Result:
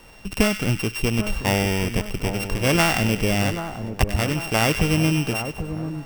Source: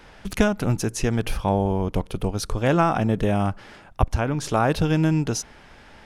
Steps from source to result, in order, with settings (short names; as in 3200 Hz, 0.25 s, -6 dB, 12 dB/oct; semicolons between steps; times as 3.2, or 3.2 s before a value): sample sorter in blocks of 16 samples; split-band echo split 1400 Hz, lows 0.788 s, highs 98 ms, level -9 dB